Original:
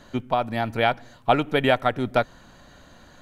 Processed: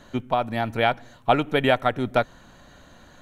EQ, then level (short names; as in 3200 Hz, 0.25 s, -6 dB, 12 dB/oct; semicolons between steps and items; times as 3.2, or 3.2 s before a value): notch 4800 Hz, Q 9.1; 0.0 dB